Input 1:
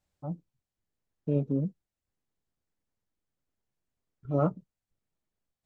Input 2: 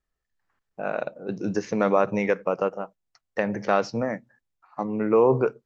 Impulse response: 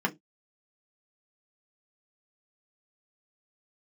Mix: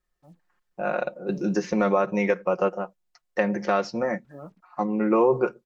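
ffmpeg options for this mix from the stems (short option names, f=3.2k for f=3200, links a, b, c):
-filter_complex "[0:a]acrusher=bits=8:mix=0:aa=0.5,volume=-15dB[a];[1:a]aecho=1:1:5.6:0.65,volume=1dB[b];[a][b]amix=inputs=2:normalize=0,equalizer=f=110:t=o:w=0.53:g=-11.5,alimiter=limit=-10dB:level=0:latency=1:release=352"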